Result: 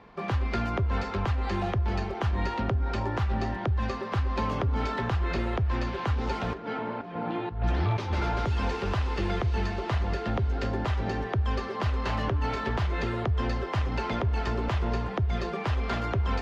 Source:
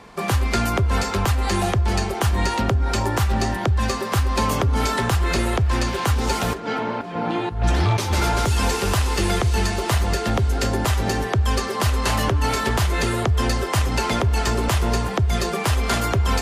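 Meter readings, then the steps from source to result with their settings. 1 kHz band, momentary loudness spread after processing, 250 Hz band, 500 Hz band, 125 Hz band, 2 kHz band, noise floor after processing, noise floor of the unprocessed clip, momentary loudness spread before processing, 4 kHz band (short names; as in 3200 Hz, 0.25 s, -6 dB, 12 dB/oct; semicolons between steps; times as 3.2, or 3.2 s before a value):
-8.0 dB, 2 LU, -7.5 dB, -7.5 dB, -7.0 dB, -9.0 dB, -35 dBFS, -27 dBFS, 2 LU, -13.5 dB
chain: air absorption 230 m; gain -7 dB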